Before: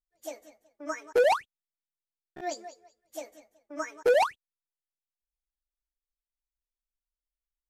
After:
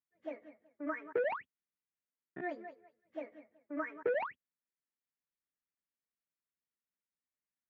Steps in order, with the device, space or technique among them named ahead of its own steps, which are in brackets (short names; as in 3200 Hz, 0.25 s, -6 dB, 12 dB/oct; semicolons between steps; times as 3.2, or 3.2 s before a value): bass amplifier (compressor 4:1, threshold -31 dBFS, peak gain reduction 10 dB; speaker cabinet 83–2300 Hz, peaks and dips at 180 Hz +7 dB, 260 Hz +7 dB, 780 Hz -8 dB, 1900 Hz +5 dB); gain -1.5 dB